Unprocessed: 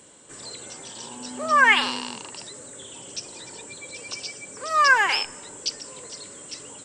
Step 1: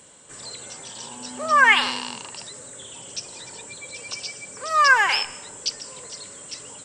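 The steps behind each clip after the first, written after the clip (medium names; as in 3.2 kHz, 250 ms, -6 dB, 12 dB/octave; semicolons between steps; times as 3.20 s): peaking EQ 320 Hz -6 dB 0.86 oct; on a send at -21 dB: reverberation, pre-delay 131 ms; on the sum: trim +1.5 dB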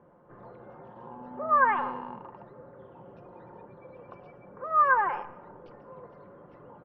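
low-pass 1.2 kHz 24 dB/octave; comb 5.7 ms, depth 40%; trim -2 dB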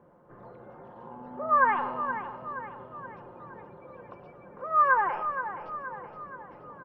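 feedback delay 473 ms, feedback 51%, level -10 dB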